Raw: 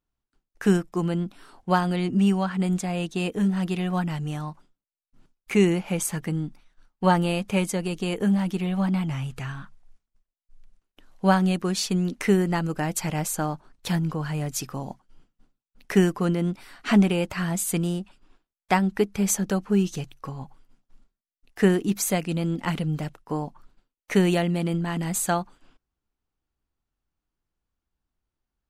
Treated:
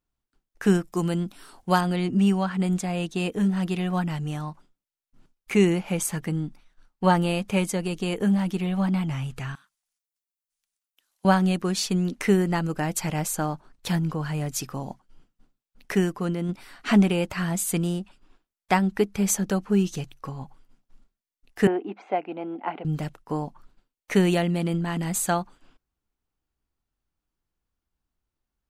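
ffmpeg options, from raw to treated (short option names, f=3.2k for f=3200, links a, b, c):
-filter_complex "[0:a]asettb=1/sr,asplit=3[a][b][c];[a]atrim=end=0.834[d];[b]atrim=start=0.83:end=1.81,asetpts=PTS-STARTPTS,afade=t=in:d=0.004:c=qsin,afade=t=out:st=0.976:d=0.004:c=qsin,highshelf=f=5.1k:g=11[e];[c]atrim=start=1.806[f];[d][e]acrossfade=d=0.004:c1=hsin:c2=qsin[g];[g][f]acrossfade=d=0.004:c1=qsin:c2=hsin,asettb=1/sr,asplit=3[h][i][j];[h]atrim=end=9.554[k];[i]atrim=start=9.55:end=11.25,asetpts=PTS-STARTPTS,afade=t=in:d=0.004:c=qsin,afade=t=out:st=1.696:d=0.004:c=qsin,aderivative[l];[j]atrim=start=11.246[m];[k][l]acrossfade=d=0.004:c1=hsin:c2=qsin[n];[n][m]acrossfade=d=0.004:c1=qsin:c2=hsin,asettb=1/sr,asplit=3[o][p][q];[o]atrim=end=21.674[r];[p]atrim=start=21.67:end=22.85,asetpts=PTS-STARTPTS,afade=t=in:d=0.004:c=qsin,afade=t=out:st=1.176:d=0.004:c=qsin,highpass=f=310:w=0.5412,highpass=f=310:w=1.3066,equalizer=f=490:t=q:w=4:g=-4,equalizer=f=770:t=q:w=4:g=9,equalizer=f=1.2k:t=q:w=4:g=-5,equalizer=f=1.8k:t=q:w=4:g=-9,lowpass=f=2.2k:w=0.5412,lowpass=f=2.2k:w=1.3066[s];[q]atrim=start=22.846[t];[r][s]acrossfade=d=0.004:c1=hsin:c2=qsin[u];[u][t]acrossfade=d=0.004:c1=qsin:c2=hsin,asplit=3[v][w][x];[v]atrim=end=15.952[y];[w]atrim=start=15.948:end=16.492,asetpts=PTS-STARTPTS,volume=-3.5dB[z];[x]atrim=start=16.488[aa];[y][z]acrossfade=d=0.004:c1=hsin:c2=hsin[ab];[ab][aa]acrossfade=d=0.004:c1=hsin:c2=hsin"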